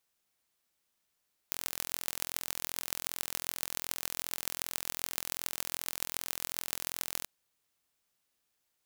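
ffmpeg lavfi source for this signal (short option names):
-f lavfi -i "aevalsrc='0.631*eq(mod(n,1035),0)*(0.5+0.5*eq(mod(n,6210),0))':d=5.74:s=44100"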